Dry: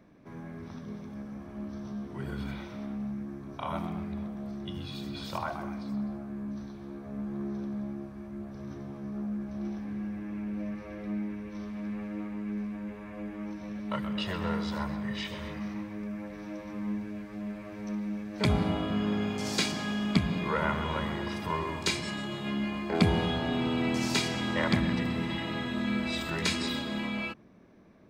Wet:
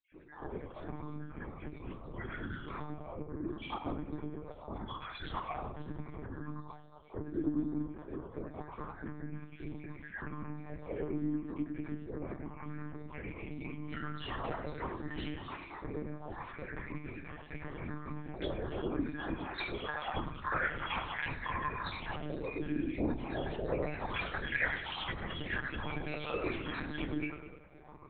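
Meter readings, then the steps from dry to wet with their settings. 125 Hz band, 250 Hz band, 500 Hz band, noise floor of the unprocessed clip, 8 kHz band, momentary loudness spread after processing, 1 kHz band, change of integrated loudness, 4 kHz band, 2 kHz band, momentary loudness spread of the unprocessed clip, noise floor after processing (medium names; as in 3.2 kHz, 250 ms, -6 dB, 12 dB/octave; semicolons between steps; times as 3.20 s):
-7.5 dB, -8.5 dB, -4.0 dB, -44 dBFS, under -35 dB, 10 LU, -3.5 dB, -6.5 dB, -10.5 dB, -2.0 dB, 12 LU, -52 dBFS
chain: random holes in the spectrogram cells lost 61%; simulated room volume 170 m³, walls furnished, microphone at 3.6 m; careless resampling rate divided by 3×, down filtered, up zero stuff; AM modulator 59 Hz, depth 80%; compression 3:1, threshold -30 dBFS, peak gain reduction 16.5 dB; peaking EQ 140 Hz -6.5 dB 1.5 oct; on a send: feedback echo behind a low-pass 97 ms, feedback 61%, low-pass 2.4 kHz, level -10 dB; on the sum: monotone LPC vocoder at 8 kHz 150 Hz; sweeping bell 0.26 Hz 280–2500 Hz +12 dB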